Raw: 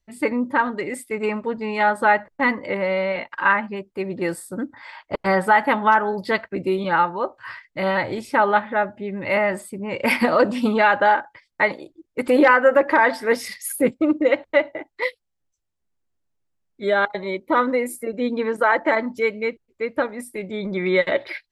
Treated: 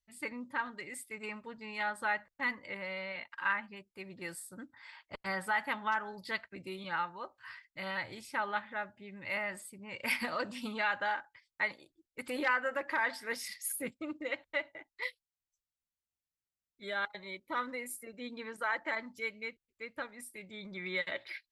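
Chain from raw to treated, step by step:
guitar amp tone stack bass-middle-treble 5-5-5
level −2 dB

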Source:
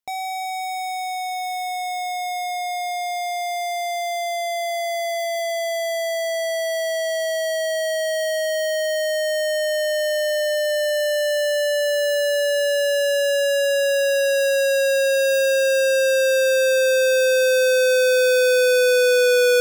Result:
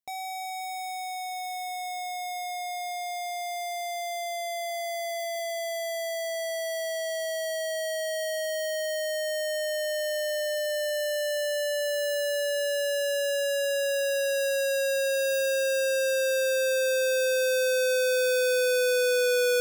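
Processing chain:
high-shelf EQ 6,500 Hz +5 dB
level −8 dB

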